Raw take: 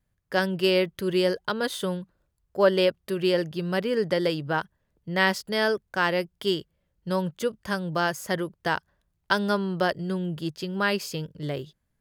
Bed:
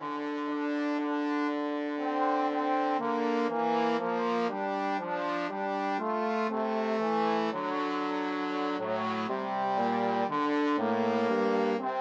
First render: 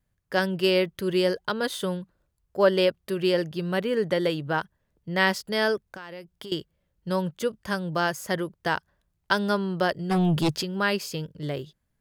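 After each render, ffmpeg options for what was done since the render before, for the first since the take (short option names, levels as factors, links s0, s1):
-filter_complex "[0:a]asettb=1/sr,asplit=3[s0][s1][s2];[s0]atrim=end=3.724[s3];[s1]atrim=start=3.72:end=4.5,asetpts=PTS-STARTPTS,afade=t=in:d=0.004:c=qsin,afade=t=out:st=0.776:d=0.004:c=qsin,asuperstop=centerf=5000:order=4:qfactor=6.4[s4];[s2]atrim=start=4.496[s5];[s3][s4]acrossfade=d=0.004:c1=hsin:c2=qsin[s6];[s6][s5]acrossfade=d=0.004:c1=qsin:c2=hsin,asettb=1/sr,asplit=3[s7][s8][s9];[s7]atrim=end=5.894[s10];[s8]atrim=start=5.89:end=6.52,asetpts=PTS-STARTPTS,afade=t=in:d=0.004:c=qsin,afade=t=out:st=0.626:d=0.004:c=qsin,acompressor=threshold=0.0158:ratio=10:attack=3.2:release=140:knee=1:detection=peak[s11];[s9]atrim=start=6.516[s12];[s10][s11]acrossfade=d=0.004:c1=hsin:c2=qsin[s13];[s13][s12]acrossfade=d=0.004:c1=qsin:c2=hsin,asplit=3[s14][s15][s16];[s14]afade=t=out:st=10.1:d=0.02[s17];[s15]aeval=exprs='0.126*sin(PI/2*2.51*val(0)/0.126)':c=same,afade=t=in:st=10.1:d=0.02,afade=t=out:st=10.61:d=0.02[s18];[s16]afade=t=in:st=10.61:d=0.02[s19];[s17][s18][s19]amix=inputs=3:normalize=0"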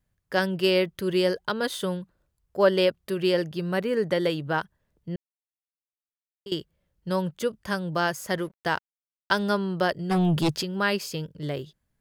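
-filter_complex "[0:a]asettb=1/sr,asplit=3[s0][s1][s2];[s0]atrim=end=3.594[s3];[s1]atrim=start=3.59:end=4.12,asetpts=PTS-STARTPTS,afade=t=in:d=0.004:c=qsin,afade=t=out:st=0.526:d=0.004:c=qsin,equalizer=f=3300:w=4.4:g=-7[s4];[s2]atrim=start=4.116[s5];[s3][s4]acrossfade=d=0.004:c1=hsin:c2=qsin[s6];[s6][s5]acrossfade=d=0.004:c1=qsin:c2=hsin,asettb=1/sr,asplit=3[s7][s8][s9];[s7]atrim=end=8.294[s10];[s8]atrim=start=8.29:end=9.43,asetpts=PTS-STARTPTS,afade=t=in:d=0.004:c=qsin,afade=t=out:st=1.136:d=0.004:c=qsin,aeval=exprs='sgn(val(0))*max(abs(val(0))-0.00282,0)':c=same[s11];[s9]atrim=start=9.426[s12];[s10][s11]acrossfade=d=0.004:c1=hsin:c2=qsin[s13];[s13][s12]acrossfade=d=0.004:c1=qsin:c2=hsin,asplit=3[s14][s15][s16];[s14]atrim=end=5.16,asetpts=PTS-STARTPTS,afade=t=out:st=5.156:d=0.004:c=hsin[s17];[s15]atrim=start=5.16:end=6.46,asetpts=PTS-STARTPTS,volume=0[s18];[s16]atrim=start=6.46,asetpts=PTS-STARTPTS,afade=t=in:d=0.004:c=hsin[s19];[s17][s18][s19]concat=n=3:v=0:a=1"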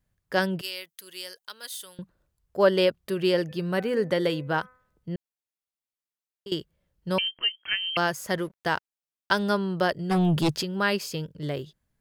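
-filter_complex "[0:a]asettb=1/sr,asplit=3[s0][s1][s2];[s0]atrim=end=0.614[s3];[s1]atrim=start=0.61:end=1.99,asetpts=PTS-STARTPTS,afade=t=in:d=0.004:c=qsin,afade=t=out:st=1.376:d=0.004:c=qsin,aderivative[s4];[s2]atrim=start=1.986[s5];[s3][s4]acrossfade=d=0.004:c1=hsin:c2=qsin[s6];[s6][s5]acrossfade=d=0.004:c1=qsin:c2=hsin,asplit=3[s7][s8][s9];[s7]afade=t=out:st=3.48:d=0.02[s10];[s8]bandreject=f=253.1:t=h:w=4,bandreject=f=506.2:t=h:w=4,bandreject=f=759.3:t=h:w=4,bandreject=f=1012.4:t=h:w=4,bandreject=f=1265.5:t=h:w=4,bandreject=f=1518.6:t=h:w=4,bandreject=f=1771.7:t=h:w=4,bandreject=f=2024.8:t=h:w=4,bandreject=f=2277.9:t=h:w=4,bandreject=f=2531:t=h:w=4,afade=t=in:st=3.48:d=0.02,afade=t=out:st=5.1:d=0.02[s11];[s9]afade=t=in:st=5.1:d=0.02[s12];[s10][s11][s12]amix=inputs=3:normalize=0,asettb=1/sr,asplit=3[s13][s14][s15];[s13]atrim=end=7.184[s16];[s14]atrim=start=7.18:end=7.97,asetpts=PTS-STARTPTS,afade=t=in:d=0.004:c=qsin,afade=t=out:st=0.786:d=0.004:c=qsin,lowpass=f=2800:t=q:w=0.5098,lowpass=f=2800:t=q:w=0.6013,lowpass=f=2800:t=q:w=0.9,lowpass=f=2800:t=q:w=2.563,afreqshift=-3300[s17];[s15]atrim=start=7.966[s18];[s16][s17]acrossfade=d=0.004:c1=hsin:c2=qsin[s19];[s19][s18]acrossfade=d=0.004:c1=qsin:c2=hsin"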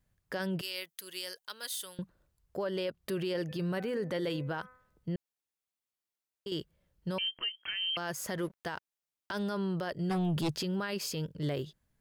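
-af "acompressor=threshold=0.0501:ratio=6,alimiter=level_in=1.33:limit=0.0631:level=0:latency=1:release=14,volume=0.75"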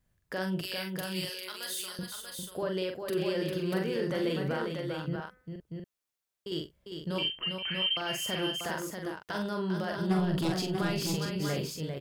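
-filter_complex "[0:a]asplit=2[s0][s1];[s1]adelay=43,volume=0.596[s2];[s0][s2]amix=inputs=2:normalize=0,aecho=1:1:46|400|639:0.178|0.501|0.562"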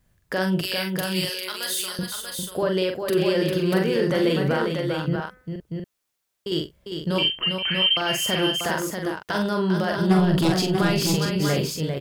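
-af "volume=2.99"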